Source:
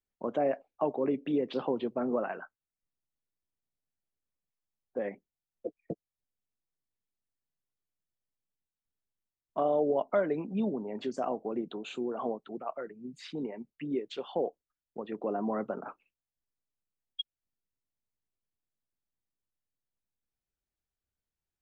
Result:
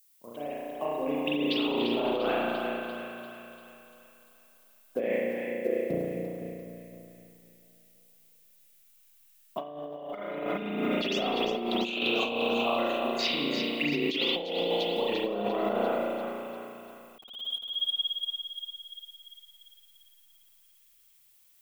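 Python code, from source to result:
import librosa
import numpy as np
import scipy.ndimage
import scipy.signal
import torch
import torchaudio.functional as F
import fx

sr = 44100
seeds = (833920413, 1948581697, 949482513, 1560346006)

p1 = fx.fade_in_head(x, sr, length_s=2.73)
p2 = fx.band_shelf(p1, sr, hz=3700.0, db=15.5, octaves=1.7)
p3 = fx.dmg_noise_colour(p2, sr, seeds[0], colour='violet', level_db=-62.0)
p4 = 10.0 ** (-20.5 / 20.0) * np.tanh(p3 / 10.0 ** (-20.5 / 20.0))
p5 = p3 + (p4 * librosa.db_to_amplitude(-5.0))
p6 = fx.transient(p5, sr, attack_db=7, sustain_db=3)
p7 = fx.echo_split(p6, sr, split_hz=670.0, low_ms=255, high_ms=345, feedback_pct=52, wet_db=-6.0)
p8 = fx.rev_spring(p7, sr, rt60_s=1.7, pass_ms=(34,), chirp_ms=75, drr_db=-6.0)
p9 = fx.over_compress(p8, sr, threshold_db=-21.0, ratio=-0.5)
p10 = fx.dynamic_eq(p9, sr, hz=110.0, q=2.2, threshold_db=-48.0, ratio=4.0, max_db=-6)
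y = p10 * librosa.db_to_amplitude(-7.5)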